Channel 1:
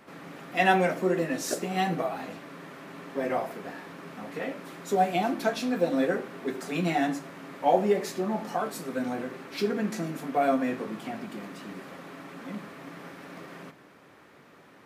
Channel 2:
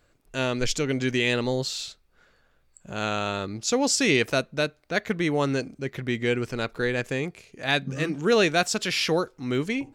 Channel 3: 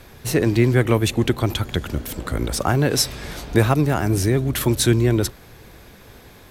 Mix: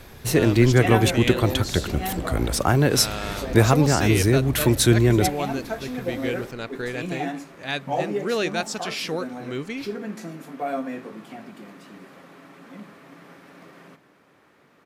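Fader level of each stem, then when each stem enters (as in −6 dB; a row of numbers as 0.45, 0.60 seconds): −3.5, −4.5, 0.0 decibels; 0.25, 0.00, 0.00 seconds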